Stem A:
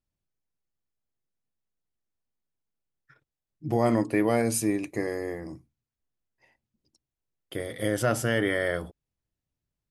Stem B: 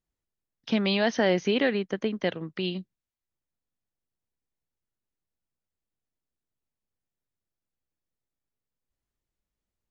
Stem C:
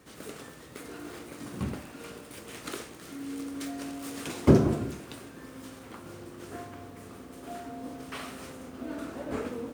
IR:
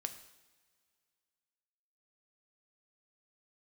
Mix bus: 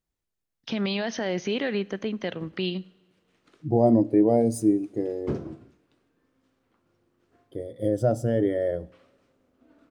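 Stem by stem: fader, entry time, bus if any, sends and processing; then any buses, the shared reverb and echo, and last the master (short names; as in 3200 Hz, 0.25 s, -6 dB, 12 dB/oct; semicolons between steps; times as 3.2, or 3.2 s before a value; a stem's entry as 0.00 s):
+1.5 dB, 0.00 s, send -8 dB, median filter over 3 samples; band shelf 1800 Hz -10 dB; spectral expander 1.5:1
-0.5 dB, 0.00 s, send -8 dB, limiter -20.5 dBFS, peak gain reduction 9.5 dB
-10.5 dB, 0.80 s, no send, LPF 5100 Hz 12 dB/oct; upward expander 1.5:1, over -43 dBFS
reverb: on, pre-delay 3 ms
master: dry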